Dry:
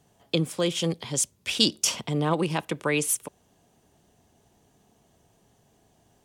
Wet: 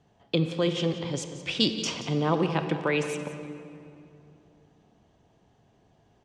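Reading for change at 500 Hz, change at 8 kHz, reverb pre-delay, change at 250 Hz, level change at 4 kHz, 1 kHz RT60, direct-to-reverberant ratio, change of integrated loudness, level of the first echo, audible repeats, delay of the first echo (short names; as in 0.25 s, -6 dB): +1.0 dB, -12.5 dB, 23 ms, +0.5 dB, -3.5 dB, 2.5 s, 7.0 dB, -2.0 dB, -14.0 dB, 1, 0.177 s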